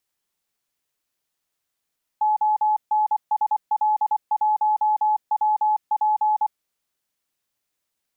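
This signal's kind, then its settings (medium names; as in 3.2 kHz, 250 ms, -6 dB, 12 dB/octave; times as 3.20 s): Morse "ONSL1WP" 24 wpm 853 Hz -16.5 dBFS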